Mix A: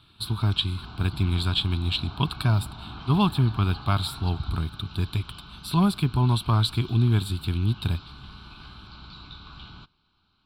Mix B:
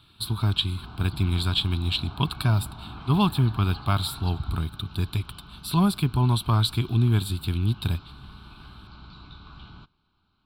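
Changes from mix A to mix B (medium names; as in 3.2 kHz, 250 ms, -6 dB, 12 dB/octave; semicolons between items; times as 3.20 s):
first sound: add treble shelf 2.4 kHz -9.5 dB; master: add treble shelf 11 kHz +9 dB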